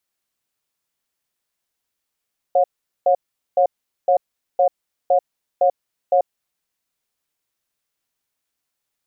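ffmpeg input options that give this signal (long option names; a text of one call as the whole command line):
ffmpeg -f lavfi -i "aevalsrc='0.188*(sin(2*PI*548*t)+sin(2*PI*719*t))*clip(min(mod(t,0.51),0.09-mod(t,0.51))/0.005,0,1)':duration=3.86:sample_rate=44100" out.wav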